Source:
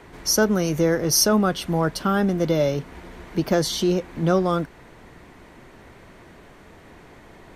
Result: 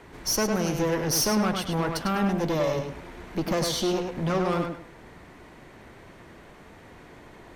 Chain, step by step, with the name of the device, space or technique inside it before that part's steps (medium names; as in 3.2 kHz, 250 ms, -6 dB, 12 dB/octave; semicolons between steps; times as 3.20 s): rockabilly slapback (valve stage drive 21 dB, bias 0.55; tape echo 102 ms, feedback 30%, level -3.5 dB, low-pass 5.2 kHz)